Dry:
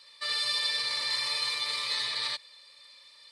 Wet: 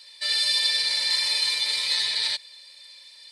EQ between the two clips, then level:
Butterworth band-reject 1,200 Hz, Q 5.2
high-shelf EQ 2,200 Hz +9 dB
0.0 dB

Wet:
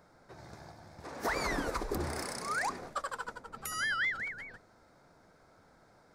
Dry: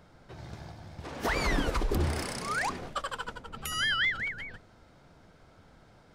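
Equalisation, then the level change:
low-shelf EQ 200 Hz −11.5 dB
parametric band 3,000 Hz −12.5 dB 0.56 octaves
−1.0 dB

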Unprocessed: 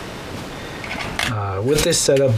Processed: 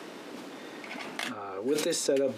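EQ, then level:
four-pole ladder high-pass 220 Hz, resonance 40%
−5.0 dB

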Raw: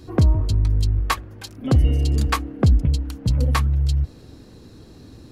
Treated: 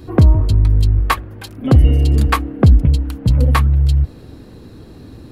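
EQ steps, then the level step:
parametric band 6,100 Hz −9 dB 1.1 octaves
+6.5 dB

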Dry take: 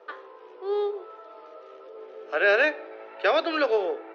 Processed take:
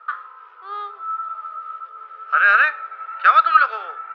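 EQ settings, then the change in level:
high-pass with resonance 1,300 Hz, resonance Q 14
high-frequency loss of the air 220 metres
high-shelf EQ 3,900 Hz +7.5 dB
0.0 dB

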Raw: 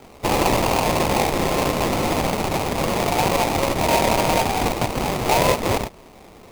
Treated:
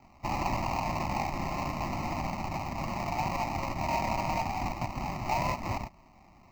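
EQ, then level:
high-shelf EQ 3,800 Hz −9 dB
phaser with its sweep stopped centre 2,300 Hz, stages 8
−8.5 dB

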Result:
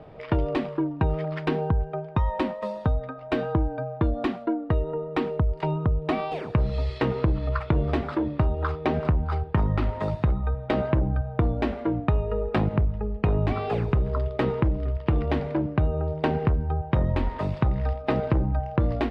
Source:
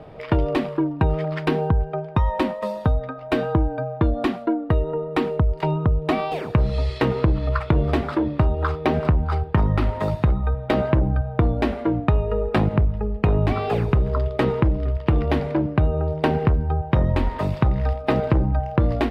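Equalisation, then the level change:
high-frequency loss of the air 59 metres
−4.0 dB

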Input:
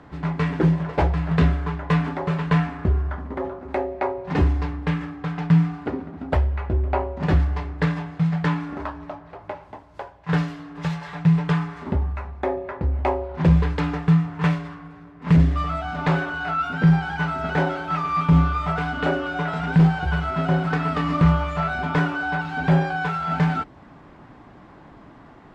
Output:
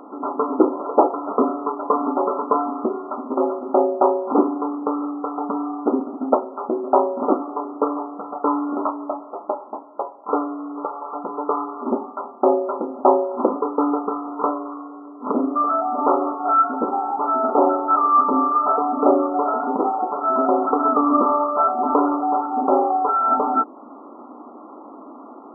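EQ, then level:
linear-phase brick-wall band-pass 220–1,400 Hz
+8.5 dB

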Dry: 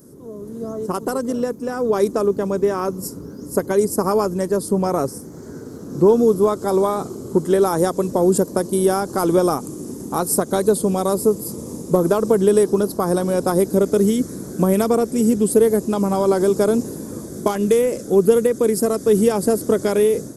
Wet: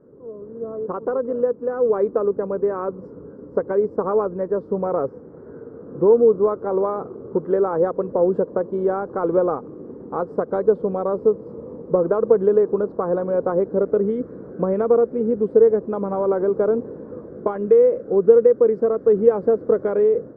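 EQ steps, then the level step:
transistor ladder low-pass 1,700 Hz, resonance 35%
parametric band 490 Hz +12 dB 0.52 octaves
−1.0 dB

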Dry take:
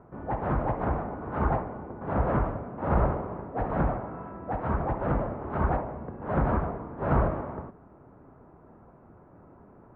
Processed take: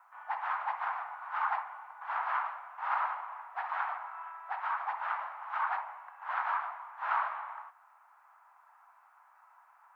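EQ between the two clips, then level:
Butterworth high-pass 850 Hz 48 dB per octave
high-shelf EQ 2,500 Hz +11.5 dB
0.0 dB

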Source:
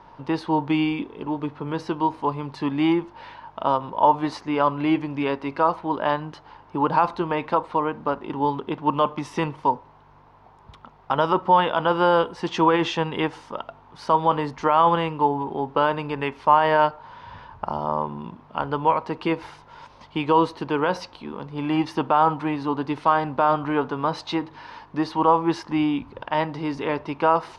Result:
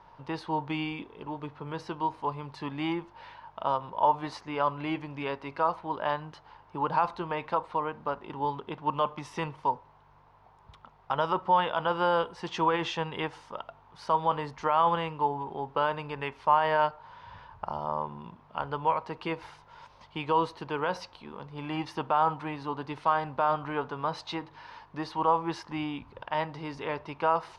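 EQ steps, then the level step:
parametric band 280 Hz −7 dB 1 octave
−6.0 dB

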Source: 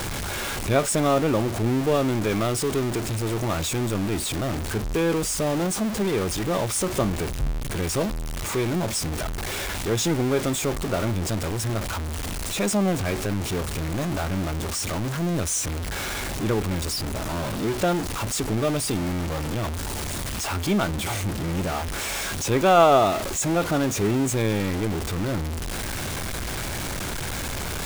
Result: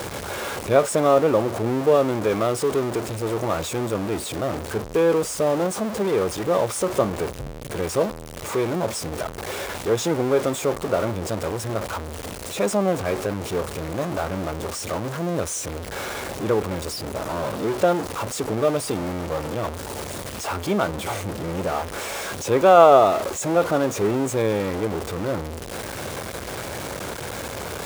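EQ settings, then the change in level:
high-pass filter 71 Hz
parametric band 500 Hz +9.5 dB 0.89 octaves
dynamic equaliser 1,100 Hz, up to +6 dB, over −36 dBFS, Q 1.2
−3.5 dB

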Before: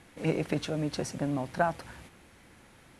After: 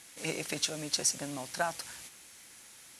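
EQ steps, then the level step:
spectral tilt +2.5 dB per octave
high-shelf EQ 3,000 Hz +9 dB
parametric band 6,300 Hz +5 dB 1.1 octaves
−5.0 dB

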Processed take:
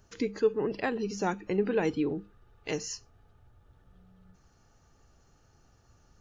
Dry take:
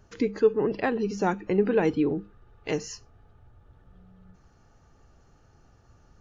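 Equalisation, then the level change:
high-shelf EQ 3,400 Hz +9 dB
−5.0 dB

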